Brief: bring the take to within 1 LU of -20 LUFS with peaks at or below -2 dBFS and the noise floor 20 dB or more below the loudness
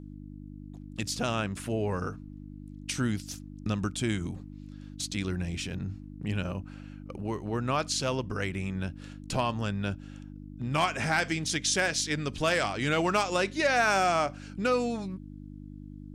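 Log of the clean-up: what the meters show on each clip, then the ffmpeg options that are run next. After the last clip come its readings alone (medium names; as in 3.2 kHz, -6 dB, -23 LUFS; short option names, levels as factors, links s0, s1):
hum 50 Hz; highest harmonic 300 Hz; hum level -41 dBFS; loudness -30.0 LUFS; peak level -14.5 dBFS; loudness target -20.0 LUFS
-> -af "bandreject=f=50:t=h:w=4,bandreject=f=100:t=h:w=4,bandreject=f=150:t=h:w=4,bandreject=f=200:t=h:w=4,bandreject=f=250:t=h:w=4,bandreject=f=300:t=h:w=4"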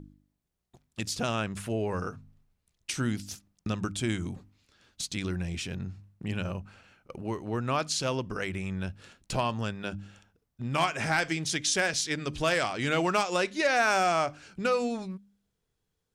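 hum not found; loudness -30.0 LUFS; peak level -14.5 dBFS; loudness target -20.0 LUFS
-> -af "volume=3.16"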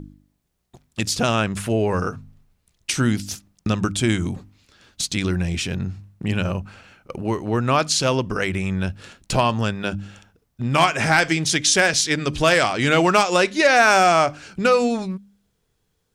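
loudness -20.0 LUFS; peak level -4.5 dBFS; noise floor -70 dBFS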